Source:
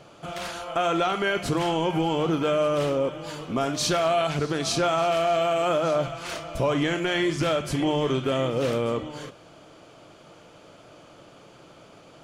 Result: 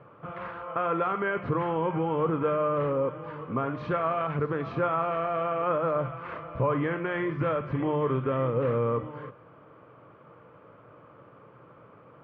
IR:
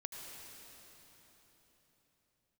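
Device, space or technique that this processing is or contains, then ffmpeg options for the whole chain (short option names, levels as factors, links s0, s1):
bass cabinet: -af "highpass=62,equalizer=f=120:t=q:w=4:g=7,equalizer=f=340:t=q:w=4:g=-3,equalizer=f=480:t=q:w=4:g=5,equalizer=f=700:t=q:w=4:g=-7,equalizer=f=1100:t=q:w=4:g=8,lowpass=f=2000:w=0.5412,lowpass=f=2000:w=1.3066,volume=0.668"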